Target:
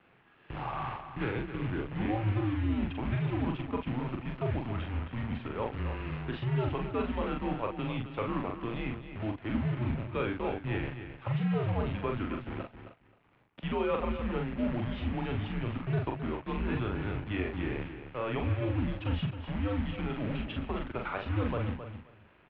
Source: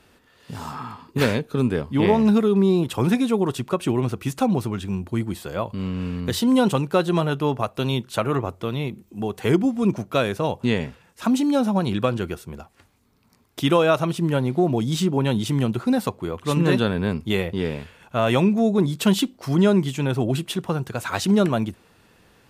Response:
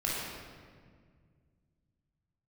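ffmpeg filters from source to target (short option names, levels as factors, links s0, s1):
-filter_complex "[0:a]areverse,acompressor=threshold=0.0355:ratio=4,areverse,acrusher=bits=7:dc=4:mix=0:aa=0.000001,asplit=2[s0][s1];[s1]adelay=42,volume=0.631[s2];[s0][s2]amix=inputs=2:normalize=0,aecho=1:1:265|530:0.316|0.0506,highpass=f=170:t=q:w=0.5412,highpass=f=170:t=q:w=1.307,lowpass=f=3000:t=q:w=0.5176,lowpass=f=3000:t=q:w=0.7071,lowpass=f=3000:t=q:w=1.932,afreqshift=-110,volume=0.794"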